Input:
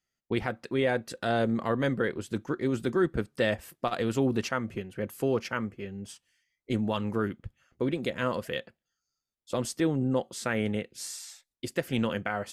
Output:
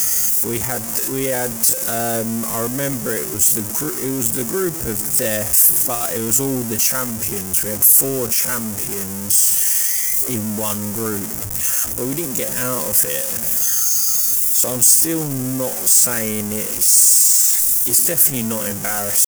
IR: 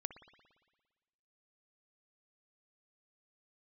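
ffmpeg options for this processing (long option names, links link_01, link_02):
-af "aeval=exprs='val(0)+0.5*0.0398*sgn(val(0))':channel_layout=same,aexciter=amount=5.2:drive=9.8:freq=5800,atempo=0.65,volume=1.5dB"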